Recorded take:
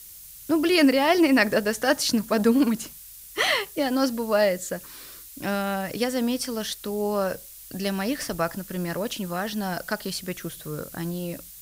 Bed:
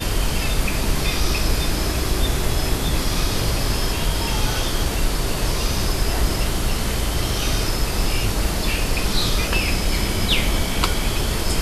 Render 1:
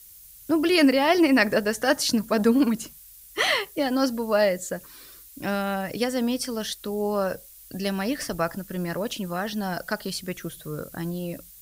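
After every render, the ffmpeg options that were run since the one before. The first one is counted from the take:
ffmpeg -i in.wav -af "afftdn=noise_reduction=6:noise_floor=-45" out.wav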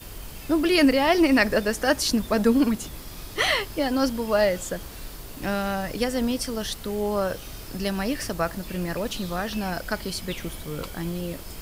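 ffmpeg -i in.wav -i bed.wav -filter_complex "[1:a]volume=-18.5dB[link_01];[0:a][link_01]amix=inputs=2:normalize=0" out.wav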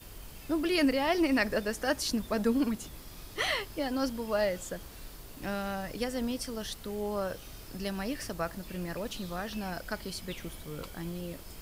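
ffmpeg -i in.wav -af "volume=-8dB" out.wav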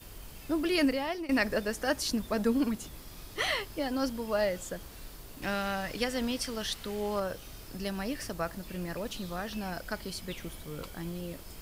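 ffmpeg -i in.wav -filter_complex "[0:a]asettb=1/sr,asplit=3[link_01][link_02][link_03];[link_01]atrim=end=5.424[link_04];[link_02]atrim=start=5.42:end=7.2,asetpts=PTS-STARTPTS,afade=type=in:duration=0.004:curve=qsin,afade=type=out:start_time=1.776:duration=0.004:curve=qsin,equalizer=frequency=2600:width=0.45:gain=6.5[link_05];[link_03]atrim=start=7.196[link_06];[link_04][link_05]acrossfade=duration=0.004:curve1=hsin:curve2=qsin[link_07];[link_07][link_06]acrossfade=duration=0.004:curve1=qsin:curve2=hsin,asplit=2[link_08][link_09];[link_08]atrim=end=1.29,asetpts=PTS-STARTPTS,afade=type=out:start_time=0.83:duration=0.46:silence=0.149624[link_10];[link_09]atrim=start=1.29,asetpts=PTS-STARTPTS,afade=type=in:duration=0.004:curve=hsin:silence=0.149624[link_11];[link_10][link_11]concat=n=2:v=0:a=1" out.wav

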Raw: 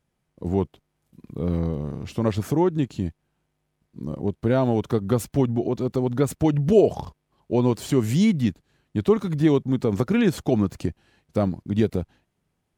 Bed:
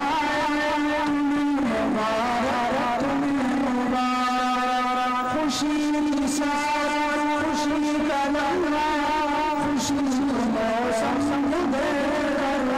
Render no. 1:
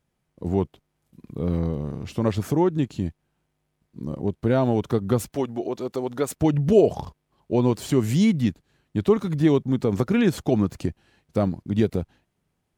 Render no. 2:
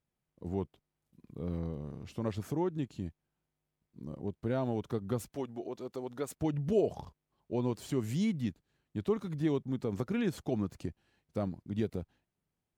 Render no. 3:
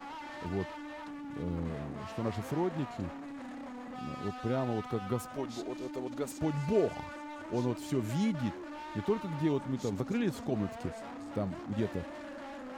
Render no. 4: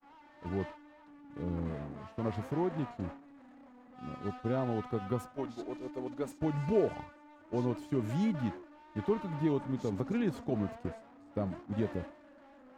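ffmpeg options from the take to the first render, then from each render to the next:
ffmpeg -i in.wav -filter_complex "[0:a]asettb=1/sr,asplit=3[link_01][link_02][link_03];[link_01]atrim=end=5.334[link_04];[link_02]atrim=start=5.33:end=6.36,asetpts=PTS-STARTPTS,afade=type=in:duration=0.004:curve=qsin,afade=type=out:start_time=1.026:duration=0.004:curve=qsin,bass=frequency=250:gain=-14,treble=frequency=4000:gain=2[link_05];[link_03]atrim=start=6.356[link_06];[link_04][link_05]acrossfade=duration=0.004:curve1=hsin:curve2=qsin[link_07];[link_07][link_06]acrossfade=duration=0.004:curve1=qsin:curve2=hsin" out.wav
ffmpeg -i in.wav -af "volume=-12dB" out.wav
ffmpeg -i in.wav -i bed.wav -filter_complex "[1:a]volume=-20.5dB[link_01];[0:a][link_01]amix=inputs=2:normalize=0" out.wav
ffmpeg -i in.wav -af "highshelf=frequency=3200:gain=-9,agate=range=-33dB:threshold=-36dB:ratio=3:detection=peak" out.wav

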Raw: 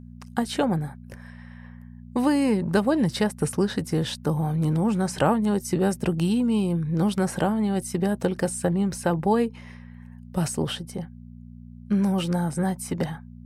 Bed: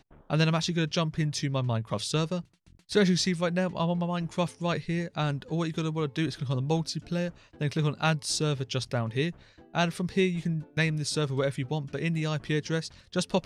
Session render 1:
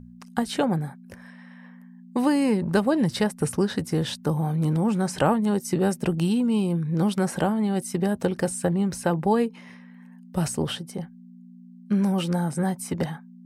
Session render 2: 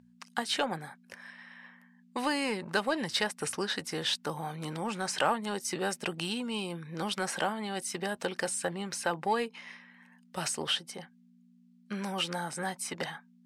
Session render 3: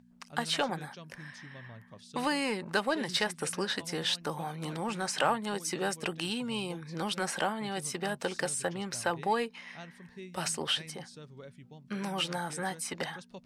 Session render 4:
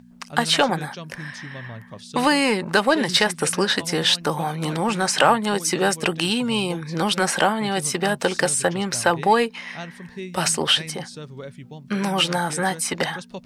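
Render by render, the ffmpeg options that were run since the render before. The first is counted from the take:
ffmpeg -i in.wav -af "bandreject=frequency=60:width_type=h:width=4,bandreject=frequency=120:width_type=h:width=4" out.wav
ffmpeg -i in.wav -filter_complex "[0:a]bandpass=frequency=3100:width_type=q:width=0.57:csg=0,asplit=2[link_01][link_02];[link_02]asoftclip=type=tanh:threshold=-27.5dB,volume=-5dB[link_03];[link_01][link_03]amix=inputs=2:normalize=0" out.wav
ffmpeg -i in.wav -i bed.wav -filter_complex "[1:a]volume=-21dB[link_01];[0:a][link_01]amix=inputs=2:normalize=0" out.wav
ffmpeg -i in.wav -af "volume=12dB,alimiter=limit=-3dB:level=0:latency=1" out.wav

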